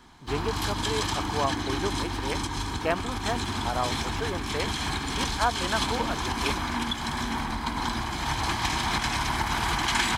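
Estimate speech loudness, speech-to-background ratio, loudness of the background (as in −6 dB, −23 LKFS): −33.0 LKFS, −4.0 dB, −29.0 LKFS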